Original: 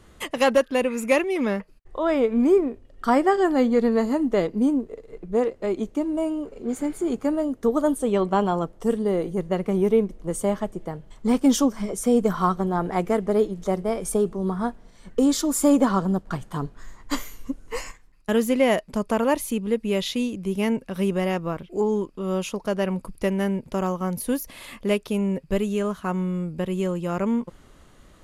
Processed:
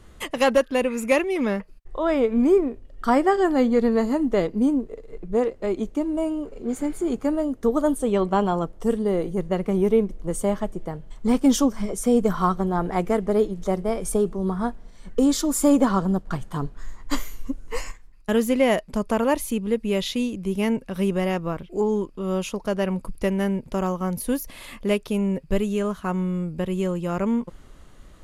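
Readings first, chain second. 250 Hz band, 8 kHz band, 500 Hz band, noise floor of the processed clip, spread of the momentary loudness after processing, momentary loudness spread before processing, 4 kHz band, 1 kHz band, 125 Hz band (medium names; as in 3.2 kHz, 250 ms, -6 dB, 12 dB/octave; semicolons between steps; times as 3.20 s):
+0.5 dB, 0.0 dB, 0.0 dB, -47 dBFS, 11 LU, 11 LU, 0.0 dB, 0.0 dB, +1.0 dB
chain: bass shelf 60 Hz +8.5 dB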